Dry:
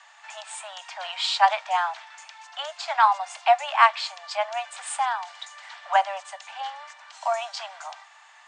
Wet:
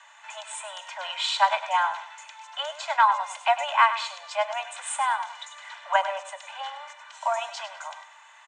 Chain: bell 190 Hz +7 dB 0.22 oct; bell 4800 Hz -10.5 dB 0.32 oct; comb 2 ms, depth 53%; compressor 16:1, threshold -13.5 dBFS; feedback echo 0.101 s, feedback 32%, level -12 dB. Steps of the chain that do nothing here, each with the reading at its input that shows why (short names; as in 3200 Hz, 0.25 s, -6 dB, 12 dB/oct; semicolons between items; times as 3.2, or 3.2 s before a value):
bell 190 Hz: input band starts at 540 Hz